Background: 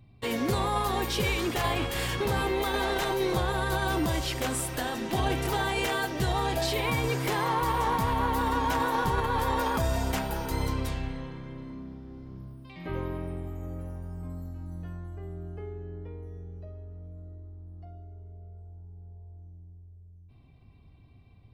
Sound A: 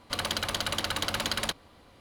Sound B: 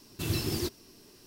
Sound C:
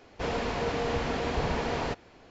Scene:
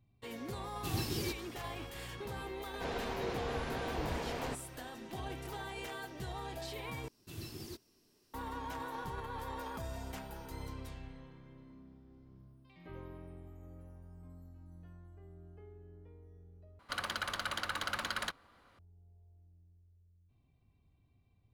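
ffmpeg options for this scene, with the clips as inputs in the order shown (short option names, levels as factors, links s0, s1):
-filter_complex "[2:a]asplit=2[s0][s1];[0:a]volume=0.178[s2];[1:a]equalizer=f=1400:t=o:w=1.1:g=10.5[s3];[s2]asplit=3[s4][s5][s6];[s4]atrim=end=7.084[s7];[s1]atrim=end=1.26,asetpts=PTS-STARTPTS,volume=0.178[s8];[s5]atrim=start=8.336:end=16.794[s9];[s3]atrim=end=2,asetpts=PTS-STARTPTS,volume=0.266[s10];[s6]atrim=start=18.786[s11];[s0]atrim=end=1.26,asetpts=PTS-STARTPTS,volume=0.501,afade=t=in:d=0.004:c=hsin,afade=t=out:st=1.256:d=0.004:c=hsin,adelay=640[s12];[3:a]atrim=end=2.3,asetpts=PTS-STARTPTS,volume=0.355,afade=t=in:d=0.004:c=hsin,afade=t=out:st=2.296:d=0.004:c=hsin,adelay=2610[s13];[s7][s8]acrossfade=d=0.004:c1=hsin:c2=hsin[s14];[s14][s9]acrossfade=d=0.004:c1=hsin:c2=hsin[s15];[s15][s10]acrossfade=d=0.004:c1=hsin:c2=hsin[s16];[s16][s11]acrossfade=d=0.004:c1=hsin:c2=hsin[s17];[s17][s12][s13]amix=inputs=3:normalize=0"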